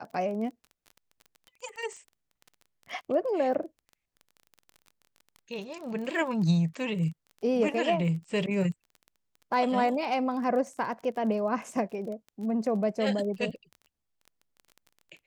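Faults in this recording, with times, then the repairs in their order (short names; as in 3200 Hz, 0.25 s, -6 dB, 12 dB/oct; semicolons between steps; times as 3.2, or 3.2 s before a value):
crackle 23/s -38 dBFS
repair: de-click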